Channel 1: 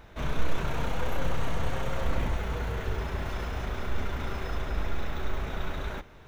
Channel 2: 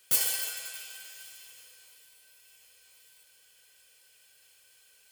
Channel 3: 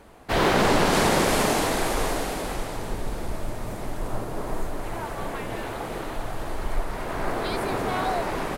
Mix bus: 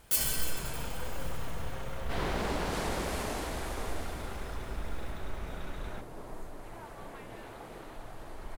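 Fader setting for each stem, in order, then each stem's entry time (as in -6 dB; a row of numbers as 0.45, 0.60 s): -8.0, -3.0, -14.0 dB; 0.00, 0.00, 1.80 s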